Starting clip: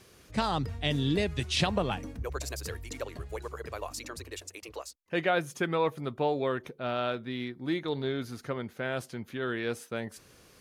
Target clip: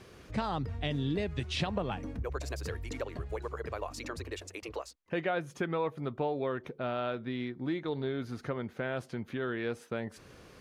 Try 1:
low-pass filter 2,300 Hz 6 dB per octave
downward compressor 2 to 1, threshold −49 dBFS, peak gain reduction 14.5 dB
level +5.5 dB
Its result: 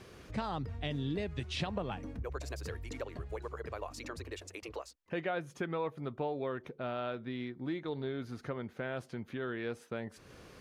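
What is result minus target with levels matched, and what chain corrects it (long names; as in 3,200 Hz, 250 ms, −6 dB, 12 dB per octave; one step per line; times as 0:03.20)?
downward compressor: peak gain reduction +3.5 dB
low-pass filter 2,300 Hz 6 dB per octave
downward compressor 2 to 1, threshold −42 dBFS, peak gain reduction 11 dB
level +5.5 dB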